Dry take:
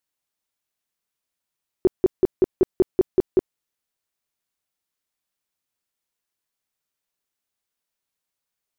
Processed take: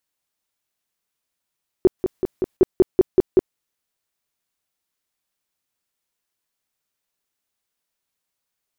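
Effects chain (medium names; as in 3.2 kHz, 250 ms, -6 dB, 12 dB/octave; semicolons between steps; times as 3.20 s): 1.99–2.57 s: compressor with a negative ratio -21 dBFS, ratio -0.5; trim +3 dB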